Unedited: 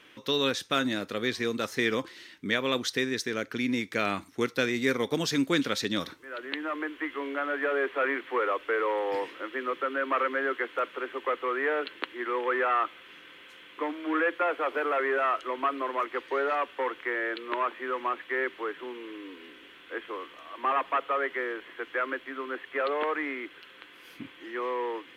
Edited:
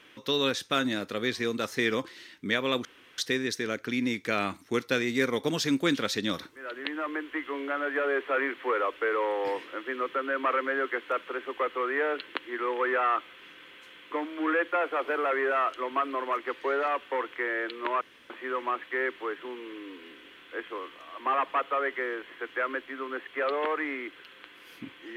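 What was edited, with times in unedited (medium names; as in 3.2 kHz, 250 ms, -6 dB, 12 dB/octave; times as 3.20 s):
2.85 s: insert room tone 0.33 s
17.68 s: insert room tone 0.29 s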